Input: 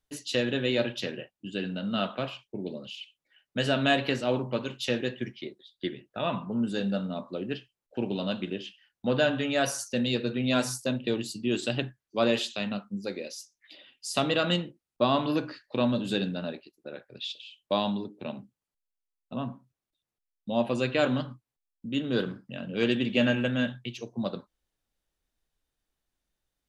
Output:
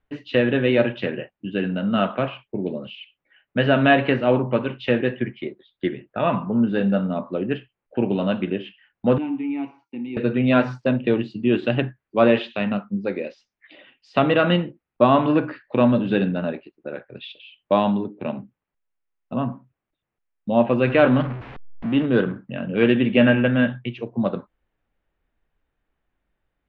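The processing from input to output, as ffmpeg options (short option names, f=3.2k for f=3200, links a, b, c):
-filter_complex "[0:a]asettb=1/sr,asplit=3[a][b][c];[a]atrim=end=9.184[d];[b]atrim=start=9.18:end=10.17,asetpts=PTS-STARTPTS,afade=t=in:d=0.004:c=qsin,afade=t=out:st=0.986:d=0.004:c=qsin,asplit=3[e][f][g];[e]bandpass=f=300:t=q:w=8,volume=0dB[h];[f]bandpass=f=870:t=q:w=8,volume=-6dB[i];[g]bandpass=f=2.24k:t=q:w=8,volume=-9dB[j];[h][i][j]amix=inputs=3:normalize=0[k];[c]atrim=start=10.166[l];[d][k]acrossfade=d=0.004:c1=hsin:c2=qsin[m];[m][l]acrossfade=d=0.004:c1=qsin:c2=hsin,asettb=1/sr,asplit=3[n][o][p];[n]atrim=end=20.874[q];[o]atrim=start=20.87:end=22.06,asetpts=PTS-STARTPTS,afade=t=in:d=0.004:c=qsin,afade=t=out:st=1.186:d=0.004:c=qsin,aeval=exprs='val(0)+0.5*0.015*sgn(val(0))':c=same[r];[p]atrim=start=22.056[s];[q][r]acrossfade=d=0.004:c1=hsin:c2=qsin[t];[t][s]acrossfade=d=0.004:c1=qsin:c2=hsin,lowpass=f=2.5k:w=0.5412,lowpass=f=2.5k:w=1.3066,volume=9dB"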